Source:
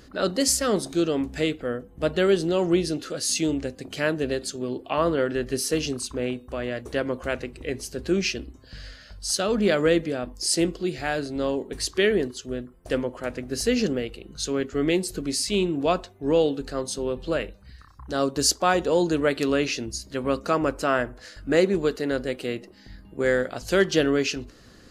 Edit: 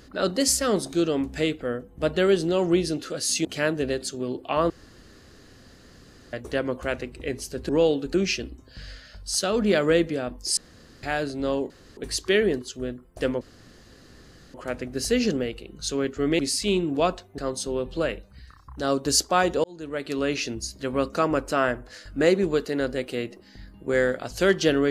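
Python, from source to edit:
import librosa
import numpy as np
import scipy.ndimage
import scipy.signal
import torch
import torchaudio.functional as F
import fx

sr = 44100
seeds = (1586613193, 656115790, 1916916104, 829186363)

y = fx.edit(x, sr, fx.cut(start_s=3.45, length_s=0.41),
    fx.room_tone_fill(start_s=5.11, length_s=1.63),
    fx.room_tone_fill(start_s=10.53, length_s=0.46),
    fx.insert_room_tone(at_s=11.66, length_s=0.27),
    fx.insert_room_tone(at_s=13.1, length_s=1.13),
    fx.cut(start_s=14.95, length_s=0.3),
    fx.move(start_s=16.24, length_s=0.45, to_s=8.1),
    fx.fade_in_span(start_s=18.95, length_s=0.84), tone=tone)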